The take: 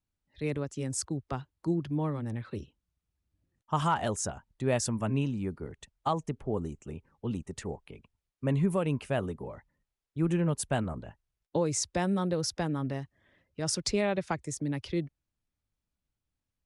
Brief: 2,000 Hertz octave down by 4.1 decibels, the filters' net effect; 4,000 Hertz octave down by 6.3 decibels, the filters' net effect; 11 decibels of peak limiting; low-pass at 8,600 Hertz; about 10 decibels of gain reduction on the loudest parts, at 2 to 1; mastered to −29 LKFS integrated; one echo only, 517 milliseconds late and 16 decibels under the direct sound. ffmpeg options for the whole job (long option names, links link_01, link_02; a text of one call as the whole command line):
ffmpeg -i in.wav -af "lowpass=8600,equalizer=frequency=2000:width_type=o:gain=-3.5,equalizer=frequency=4000:width_type=o:gain=-8,acompressor=threshold=-42dB:ratio=2,alimiter=level_in=12.5dB:limit=-24dB:level=0:latency=1,volume=-12.5dB,aecho=1:1:517:0.158,volume=17.5dB" out.wav